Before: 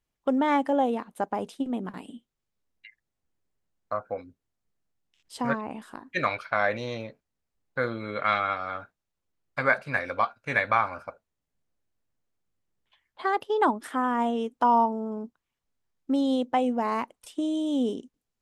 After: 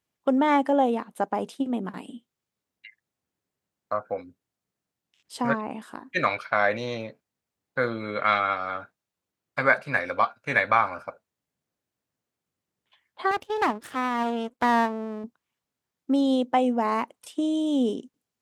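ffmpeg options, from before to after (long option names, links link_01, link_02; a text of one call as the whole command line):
ffmpeg -i in.wav -filter_complex "[0:a]asettb=1/sr,asplit=3[link_01][link_02][link_03];[link_01]atrim=end=13.314[link_04];[link_02]atrim=start=13.31:end=15.24,asetpts=PTS-STARTPTS,afade=type=in:duration=0.004:curve=qsin,afade=type=out:start_time=1.926:duration=0.004:curve=qsin,aeval=exprs='max(val(0),0)':channel_layout=same[link_05];[link_03]atrim=start=15.236[link_06];[link_04][link_05]acrossfade=duration=0.004:curve1=hsin:curve2=qsin[link_07];[link_07][link_06]acrossfade=duration=0.004:curve1=qsin:curve2=hsin,highpass=110,volume=2.5dB" out.wav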